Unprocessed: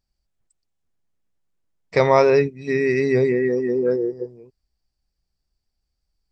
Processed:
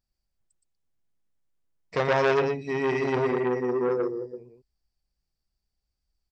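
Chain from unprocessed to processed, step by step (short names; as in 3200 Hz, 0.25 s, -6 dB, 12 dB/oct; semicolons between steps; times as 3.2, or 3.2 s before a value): echo 0.118 s -4 dB; core saturation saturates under 1500 Hz; gain -5.5 dB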